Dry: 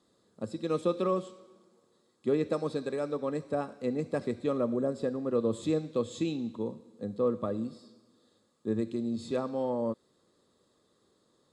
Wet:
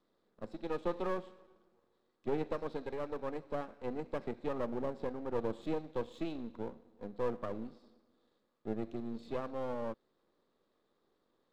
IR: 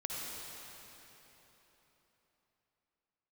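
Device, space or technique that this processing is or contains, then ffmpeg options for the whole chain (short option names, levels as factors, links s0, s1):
crystal radio: -af "highpass=210,lowpass=3100,aeval=exprs='if(lt(val(0),0),0.251*val(0),val(0))':c=same,volume=0.708"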